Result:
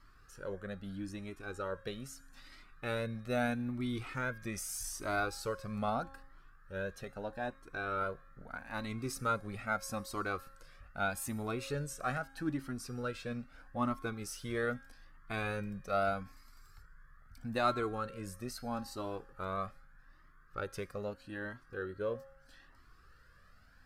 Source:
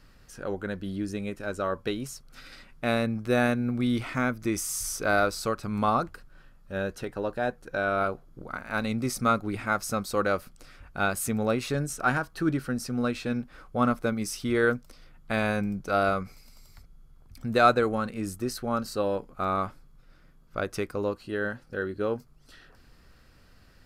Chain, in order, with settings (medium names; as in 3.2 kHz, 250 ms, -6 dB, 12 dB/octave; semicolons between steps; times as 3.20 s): wow and flutter 19 cents; feedback comb 270 Hz, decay 0.93 s, mix 60%; band noise 1.1–1.8 kHz -67 dBFS; Shepard-style flanger rising 0.79 Hz; trim +3 dB